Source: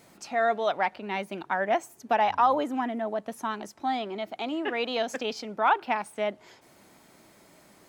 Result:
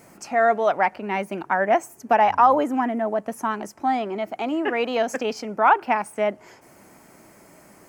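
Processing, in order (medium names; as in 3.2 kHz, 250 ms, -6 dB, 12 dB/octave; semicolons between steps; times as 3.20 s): peaking EQ 3.7 kHz -14 dB 0.54 oct; trim +6.5 dB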